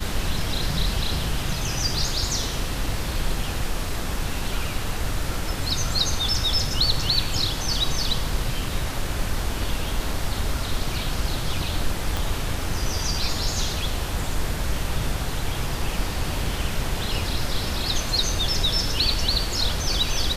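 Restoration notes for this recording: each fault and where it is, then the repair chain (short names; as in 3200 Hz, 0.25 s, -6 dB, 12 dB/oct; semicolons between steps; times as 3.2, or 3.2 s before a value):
12.17 pop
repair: de-click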